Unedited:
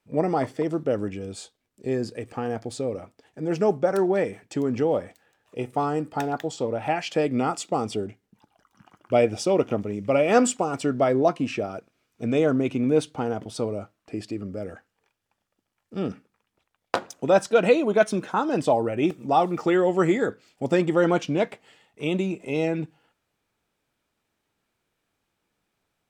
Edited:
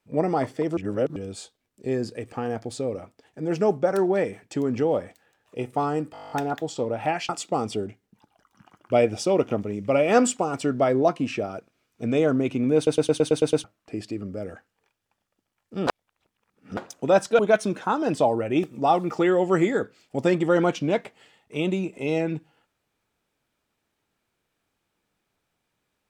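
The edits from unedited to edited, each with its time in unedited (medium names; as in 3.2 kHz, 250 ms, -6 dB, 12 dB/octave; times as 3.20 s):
0.77–1.16 s: reverse
6.13 s: stutter 0.02 s, 10 plays
7.11–7.49 s: delete
12.96 s: stutter in place 0.11 s, 8 plays
16.07–16.97 s: reverse
17.59–17.86 s: delete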